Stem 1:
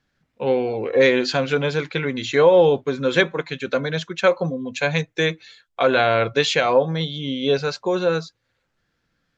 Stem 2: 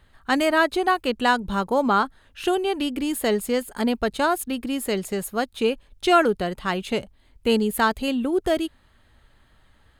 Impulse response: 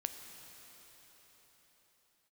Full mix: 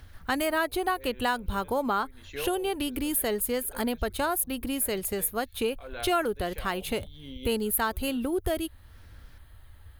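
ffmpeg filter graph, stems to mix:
-filter_complex "[0:a]acompressor=mode=upward:threshold=0.1:ratio=2.5,volume=0.141[s0];[1:a]lowshelf=f=120:t=q:w=3:g=8,aexciter=amount=4.8:drive=5.8:freq=9900,volume=0.891,asplit=2[s1][s2];[s2]apad=whole_len=413614[s3];[s0][s3]sidechaincompress=threshold=0.0158:ratio=8:attack=38:release=340[s4];[s4][s1]amix=inputs=2:normalize=0,acompressor=threshold=0.0398:ratio=2"

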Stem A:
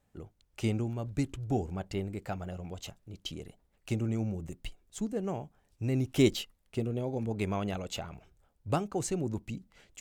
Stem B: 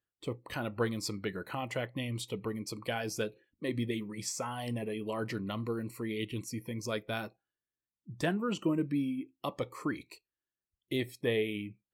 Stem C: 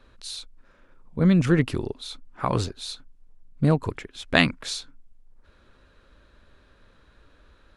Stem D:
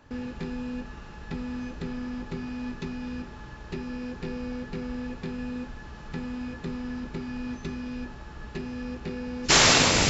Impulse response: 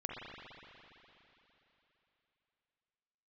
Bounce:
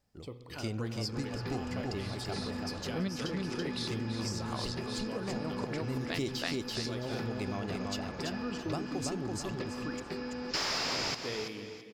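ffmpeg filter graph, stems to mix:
-filter_complex "[0:a]volume=0.631,asplit=3[s0][s1][s2];[s1]volume=0.668[s3];[1:a]volume=0.299,asplit=3[s4][s5][s6];[s5]volume=0.531[s7];[s6]volume=0.299[s8];[2:a]highpass=200,adelay=1750,volume=0.562,asplit=2[s9][s10];[s10]volume=0.376[s11];[3:a]asplit=2[s12][s13];[s13]highpass=f=720:p=1,volume=11.2,asoftclip=type=tanh:threshold=0.562[s14];[s12][s14]amix=inputs=2:normalize=0,lowpass=f=1300:p=1,volume=0.501,adelay=1050,volume=0.266,asplit=2[s15][s16];[s16]volume=0.237[s17];[s2]apad=whole_len=419519[s18];[s9][s18]sidechaincompress=threshold=0.00178:ratio=4:attack=16:release=175[s19];[4:a]atrim=start_sample=2205[s20];[s7][s20]afir=irnorm=-1:irlink=0[s21];[s3][s8][s11][s17]amix=inputs=4:normalize=0,aecho=0:1:333|666|999|1332:1|0.24|0.0576|0.0138[s22];[s0][s4][s19][s15][s21][s22]amix=inputs=6:normalize=0,equalizer=f=5000:w=3.6:g=14,acompressor=threshold=0.0282:ratio=4"

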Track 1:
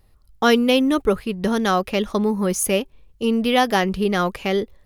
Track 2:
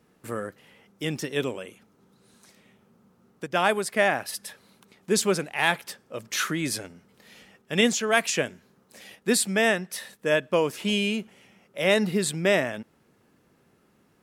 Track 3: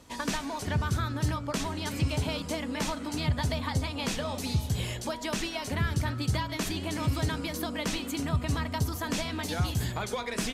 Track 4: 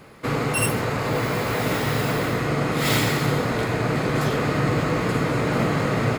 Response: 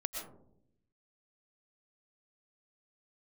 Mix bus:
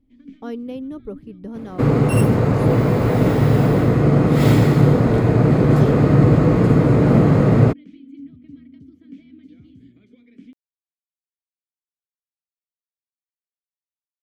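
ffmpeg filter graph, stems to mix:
-filter_complex "[0:a]volume=0.106[s0];[2:a]asplit=3[s1][s2][s3];[s1]bandpass=f=270:t=q:w=8,volume=1[s4];[s2]bandpass=f=2290:t=q:w=8,volume=0.501[s5];[s3]bandpass=f=3010:t=q:w=8,volume=0.355[s6];[s4][s5][s6]amix=inputs=3:normalize=0,volume=0.398[s7];[3:a]adelay=1550,volume=1.26[s8];[s0][s7][s8]amix=inputs=3:normalize=0,tiltshelf=f=840:g=9.5"

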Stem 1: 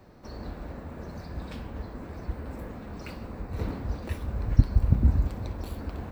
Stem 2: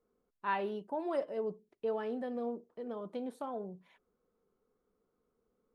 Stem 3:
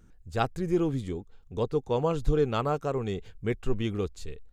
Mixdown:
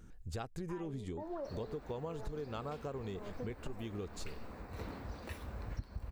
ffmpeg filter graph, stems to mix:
-filter_complex "[0:a]lowshelf=f=450:g=-9,adelay=1200,volume=0.631[s0];[1:a]afwtdn=0.00562,adelay=250,volume=0.841[s1];[2:a]volume=1.19[s2];[s1][s2]amix=inputs=2:normalize=0,acompressor=threshold=0.0158:ratio=2.5,volume=1[s3];[s0][s3]amix=inputs=2:normalize=0,acompressor=threshold=0.0126:ratio=5"

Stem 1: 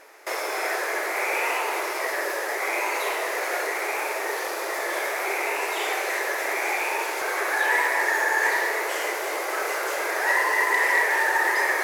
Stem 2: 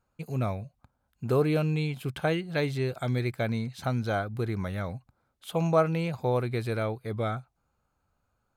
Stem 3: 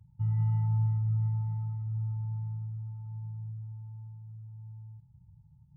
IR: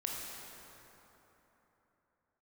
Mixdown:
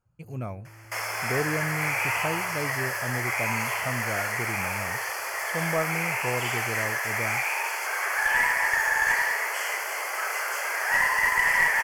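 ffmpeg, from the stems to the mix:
-filter_complex "[0:a]highpass=920,adelay=650,volume=1[s0];[1:a]volume=0.596[s1];[2:a]asoftclip=type=tanh:threshold=0.0141,adelay=50,volume=0.251[s2];[s0][s1][s2]amix=inputs=3:normalize=0,aeval=exprs='0.282*(cos(1*acos(clip(val(0)/0.282,-1,1)))-cos(1*PI/2))+0.00891*(cos(2*acos(clip(val(0)/0.282,-1,1)))-cos(2*PI/2))+0.0398*(cos(4*acos(clip(val(0)/0.282,-1,1)))-cos(4*PI/2))+0.0224*(cos(6*acos(clip(val(0)/0.282,-1,1)))-cos(6*PI/2))+0.00282*(cos(8*acos(clip(val(0)/0.282,-1,1)))-cos(8*PI/2))':c=same,asuperstop=centerf=3800:order=4:qfactor=3.7"

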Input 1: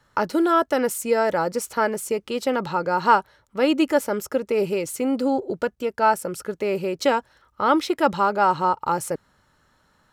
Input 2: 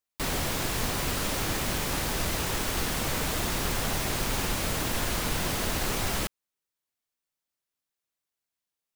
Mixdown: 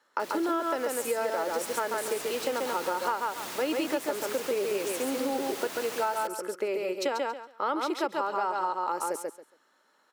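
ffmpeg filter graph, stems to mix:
-filter_complex "[0:a]highpass=f=290:w=0.5412,highpass=f=290:w=1.3066,volume=0.562,asplit=2[s0][s1];[s1]volume=0.668[s2];[1:a]highpass=310,dynaudnorm=f=930:g=3:m=2.11,volume=0.211[s3];[s2]aecho=0:1:138|276|414:1|0.19|0.0361[s4];[s0][s3][s4]amix=inputs=3:normalize=0,acompressor=threshold=0.0562:ratio=10"

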